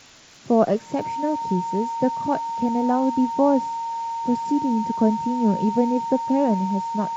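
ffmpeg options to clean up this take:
-af "adeclick=t=4,bandreject=f=920:w=30,afwtdn=0.0056"

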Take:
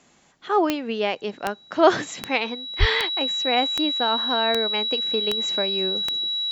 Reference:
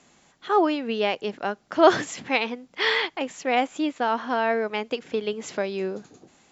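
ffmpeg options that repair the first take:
-filter_complex "[0:a]adeclick=t=4,bandreject=f=3.9k:w=30,asplit=3[a][b][c];[a]afade=t=out:st=2.79:d=0.02[d];[b]highpass=f=140:w=0.5412,highpass=f=140:w=1.3066,afade=t=in:st=2.79:d=0.02,afade=t=out:st=2.91:d=0.02[e];[c]afade=t=in:st=2.91:d=0.02[f];[d][e][f]amix=inputs=3:normalize=0"

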